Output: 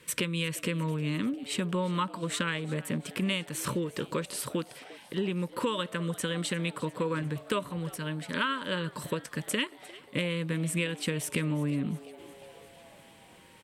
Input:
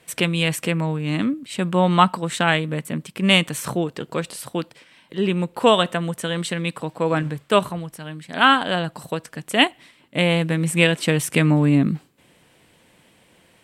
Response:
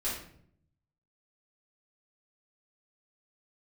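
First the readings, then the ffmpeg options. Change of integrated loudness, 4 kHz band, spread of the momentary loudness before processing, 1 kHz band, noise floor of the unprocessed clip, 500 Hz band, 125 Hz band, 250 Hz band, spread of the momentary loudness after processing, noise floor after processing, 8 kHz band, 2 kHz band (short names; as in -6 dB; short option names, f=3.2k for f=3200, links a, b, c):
-11.0 dB, -11.5 dB, 13 LU, -14.5 dB, -57 dBFS, -11.5 dB, -10.0 dB, -10.0 dB, 6 LU, -55 dBFS, -5.5 dB, -12.0 dB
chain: -filter_complex "[0:a]asuperstop=centerf=740:order=20:qfactor=2.8,acompressor=threshold=-28dB:ratio=6,asplit=2[a][b];[b]asplit=5[c][d][e][f][g];[c]adelay=352,afreqshift=130,volume=-19.5dB[h];[d]adelay=704,afreqshift=260,volume=-23.7dB[i];[e]adelay=1056,afreqshift=390,volume=-27.8dB[j];[f]adelay=1408,afreqshift=520,volume=-32dB[k];[g]adelay=1760,afreqshift=650,volume=-36.1dB[l];[h][i][j][k][l]amix=inputs=5:normalize=0[m];[a][m]amix=inputs=2:normalize=0"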